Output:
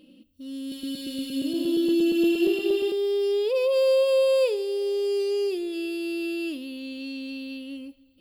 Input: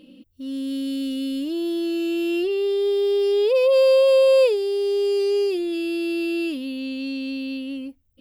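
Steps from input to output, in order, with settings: 0.60–2.92 s: backward echo that repeats 117 ms, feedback 71%, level -1 dB; treble shelf 5.7 kHz +5 dB; two-slope reverb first 0.55 s, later 2.5 s, from -13 dB, DRR 14 dB; trim -5.5 dB

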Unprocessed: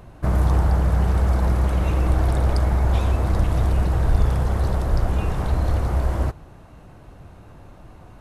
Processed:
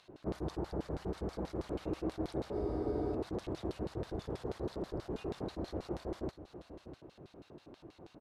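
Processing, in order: in parallel at +1 dB: compression, threshold -29 dBFS, peak gain reduction 16.5 dB; on the sum: LFO band-pass square 6.2 Hz 360–4100 Hz; dynamic bell 3.5 kHz, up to -5 dB, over -57 dBFS, Q 0.73; on a send: delay 651 ms -13.5 dB; on the sum: spectral freeze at 2.55 s, 0.59 s; attacks held to a fixed rise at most 510 dB/s; trim -3.5 dB

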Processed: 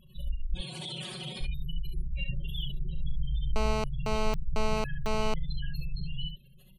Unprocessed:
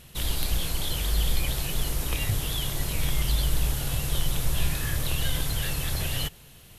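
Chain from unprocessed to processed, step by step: rattle on loud lows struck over -28 dBFS, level -29 dBFS; 0.54–1.41 s: elliptic band-pass 110–9600 Hz, stop band 40 dB; comb 5.4 ms, depth 98%; spectral gate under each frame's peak -15 dB strong; early reflections 38 ms -10.5 dB, 69 ms -6 dB; 3.56–5.34 s: mobile phone buzz -23 dBFS; trim -8 dB

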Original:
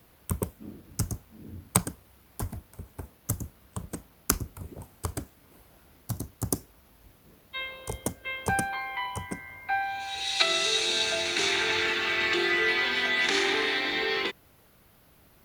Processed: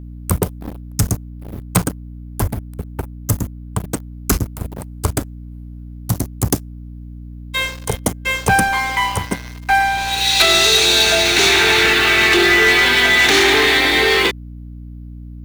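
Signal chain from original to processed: 1.29–3.80 s: peaking EQ 6.9 kHz -3 dB 2.4 oct; waveshaping leveller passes 5; hum 60 Hz, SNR 15 dB; trim -3 dB

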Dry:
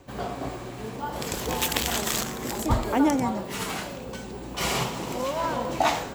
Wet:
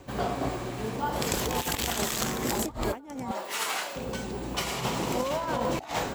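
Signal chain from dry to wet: 3.31–3.96 s: high-pass 640 Hz 12 dB/octave; compressor with a negative ratio -29 dBFS, ratio -0.5

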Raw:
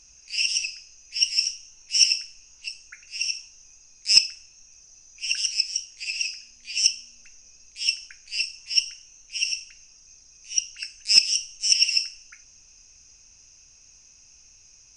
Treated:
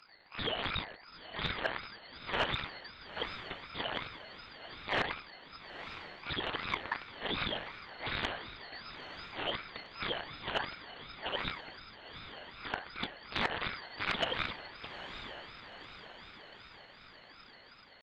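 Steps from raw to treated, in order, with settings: cycle switcher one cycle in 2, inverted; in parallel at -2 dB: compressor with a negative ratio -31 dBFS, ratio -0.5; on the sum: short-mantissa float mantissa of 4-bit; frequency inversion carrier 3.2 kHz; hard clipper -17.5 dBFS, distortion -12 dB; tempo 0.83×; distance through air 58 m; on a send: echo that smears into a reverb 927 ms, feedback 57%, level -11 dB; on the sum: ring modulator with a swept carrier 1.5 kHz, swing 25%, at 2.7 Hz; trim -3.5 dB

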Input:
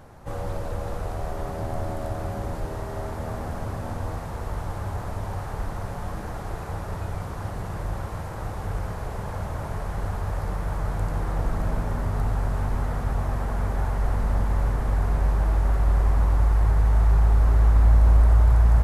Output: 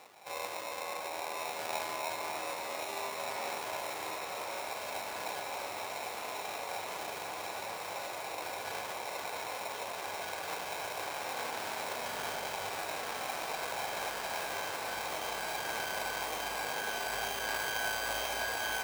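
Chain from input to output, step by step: phaser 0.57 Hz, delay 4.3 ms, feedback 26%; sample-and-hold 28×; high-pass 670 Hz 12 dB/octave; echo whose repeats swap between lows and highs 543 ms, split 1.9 kHz, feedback 88%, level -5 dB; trim -2 dB

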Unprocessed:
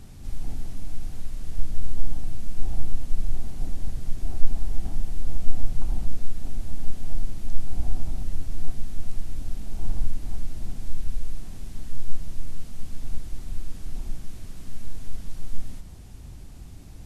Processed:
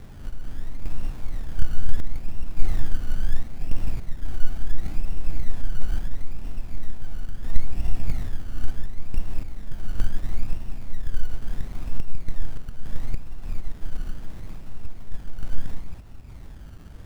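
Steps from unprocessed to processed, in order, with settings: chunks repeated in reverse 270 ms, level -7 dB; random-step tremolo; decimation with a swept rate 23×, swing 60% 0.73 Hz; 13.60–14.00 s: upward expansion 1.5:1, over -26 dBFS; trim +3 dB

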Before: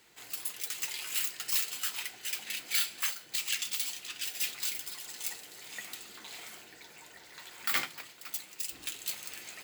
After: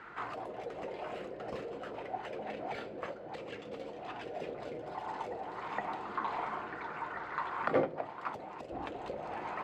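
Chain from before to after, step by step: touch-sensitive low-pass 520–1400 Hz down, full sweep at -32.5 dBFS; trim +12 dB

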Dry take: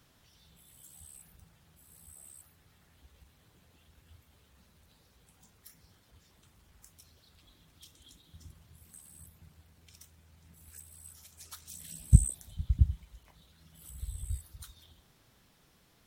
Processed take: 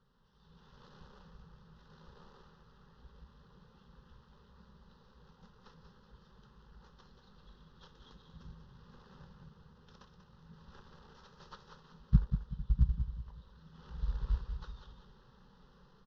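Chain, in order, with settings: CVSD coder 32 kbps; bass shelf 70 Hz +7.5 dB; level rider gain up to 10.5 dB; distance through air 280 m; static phaser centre 450 Hz, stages 8; on a send: feedback delay 189 ms, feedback 35%, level -8.5 dB; on the sum: trim -4 dB

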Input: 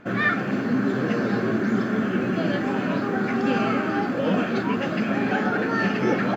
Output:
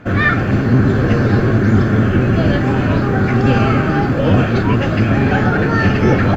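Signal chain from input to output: octave divider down 1 oct, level +3 dB; trim +7 dB

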